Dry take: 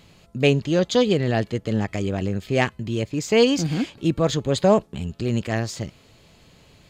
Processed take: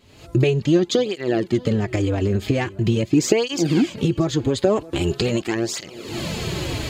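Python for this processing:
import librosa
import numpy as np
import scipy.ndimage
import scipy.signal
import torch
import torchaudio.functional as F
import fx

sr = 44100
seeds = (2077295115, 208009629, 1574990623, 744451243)

p1 = fx.spec_clip(x, sr, under_db=14, at=(4.75, 5.54), fade=0.02)
p2 = fx.recorder_agc(p1, sr, target_db=-7.5, rise_db_per_s=64.0, max_gain_db=30)
p3 = fx.peak_eq(p2, sr, hz=350.0, db=11.0, octaves=0.27)
p4 = p3 + fx.echo_single(p3, sr, ms=630, db=-20.5, dry=0)
p5 = fx.flanger_cancel(p4, sr, hz=0.43, depth_ms=6.4)
y = p5 * librosa.db_to_amplitude(-2.0)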